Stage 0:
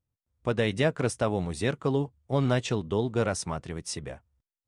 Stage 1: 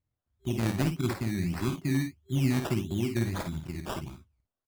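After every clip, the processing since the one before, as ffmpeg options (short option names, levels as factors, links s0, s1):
-af "afftfilt=real='re*(1-between(b*sr/4096,390,2100))':imag='im*(1-between(b*sr/4096,390,2100))':win_size=4096:overlap=0.75,acrusher=samples=17:mix=1:aa=0.000001:lfo=1:lforange=10.2:lforate=1.6,aecho=1:1:52|63:0.447|0.211"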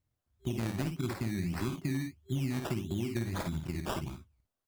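-af "acompressor=threshold=0.0251:ratio=6,volume=1.26"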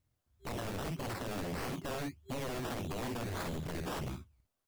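-af "aeval=exprs='0.0168*(abs(mod(val(0)/0.0168+3,4)-2)-1)':c=same,volume=1.33"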